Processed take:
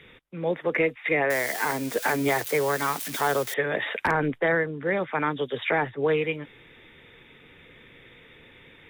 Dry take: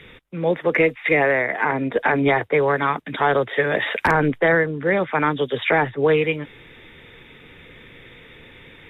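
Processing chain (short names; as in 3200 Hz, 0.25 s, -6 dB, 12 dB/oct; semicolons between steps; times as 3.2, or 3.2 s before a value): 1.3–3.54 switching spikes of -17 dBFS; low shelf 88 Hz -5 dB; gain -6 dB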